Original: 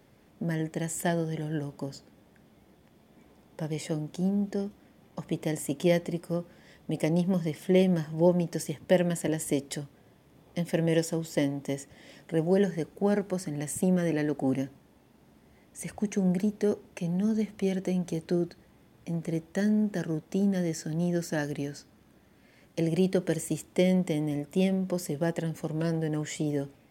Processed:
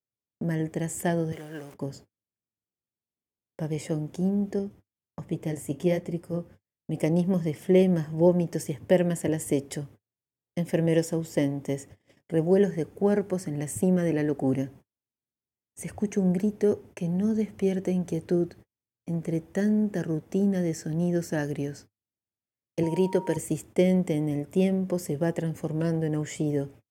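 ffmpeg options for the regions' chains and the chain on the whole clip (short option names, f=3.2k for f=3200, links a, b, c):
-filter_complex "[0:a]asettb=1/sr,asplit=3[a][b][c];[a]atrim=end=1.324[d];[b]atrim=start=1.32:end=1.74,asetpts=PTS-STARTPTS,afade=t=in:d=0.004:c=qsin,afade=t=out:st=0.416:d=0.004:c=qsin,aeval=exprs='val(0)+0.5*0.0106*sgn(val(0))':c=same,highpass=f=920:p=1[e];[c]atrim=start=1.736[f];[d][e]acrossfade=d=0.004:c1=hsin:c2=qsin[g];[g][f]acrossfade=d=0.004:c1=qsin:c2=hsin,asettb=1/sr,asplit=3[h][i][j];[h]atrim=end=4.594[k];[i]atrim=start=4.59:end=6.96,asetpts=PTS-STARTPTS,afade=t=in:d=0.004:c=qsin,afade=t=out:st=2.366:d=0.004:c=qsin,lowshelf=f=120:g=7,flanger=delay=5.3:depth=8.2:regen=-50:speed=1.3:shape=sinusoidal[l];[j]atrim=start=6.956[m];[k][l]acrossfade=d=0.004:c1=hsin:c2=qsin[n];[n][m]acrossfade=d=0.004:c1=qsin:c2=hsin,asettb=1/sr,asplit=3[o][p][q];[o]atrim=end=22.834[r];[p]atrim=start=22.83:end=23.37,asetpts=PTS-STARTPTS,afade=t=in:d=0.004:c=qsin,afade=t=out:st=0.536:d=0.004:c=qsin,highpass=f=200:p=1,aeval=exprs='val(0)+0.0126*sin(2*PI*940*n/s)':c=same[s];[q]atrim=start=23.366[t];[r][s]acrossfade=d=0.004:c1=hsin:c2=qsin[u];[u][t]acrossfade=d=0.004:c1=qsin:c2=hsin,agate=range=-44dB:threshold=-48dB:ratio=16:detection=peak,equalizer=f=100:t=o:w=0.67:g=11,equalizer=f=400:t=o:w=0.67:g=4,equalizer=f=4k:t=o:w=0.67:g=-6"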